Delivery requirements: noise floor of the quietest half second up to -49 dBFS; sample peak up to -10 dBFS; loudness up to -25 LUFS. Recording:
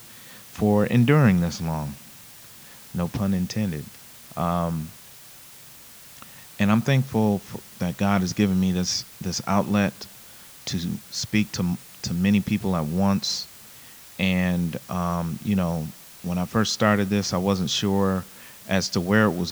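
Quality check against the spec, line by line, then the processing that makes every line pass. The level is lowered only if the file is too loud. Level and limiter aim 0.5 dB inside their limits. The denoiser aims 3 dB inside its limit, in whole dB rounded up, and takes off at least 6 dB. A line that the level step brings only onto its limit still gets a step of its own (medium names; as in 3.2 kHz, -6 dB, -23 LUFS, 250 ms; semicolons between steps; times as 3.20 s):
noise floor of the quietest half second -46 dBFS: fail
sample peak -4.0 dBFS: fail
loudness -24.0 LUFS: fail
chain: noise reduction 6 dB, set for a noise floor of -46 dBFS; trim -1.5 dB; peak limiter -10.5 dBFS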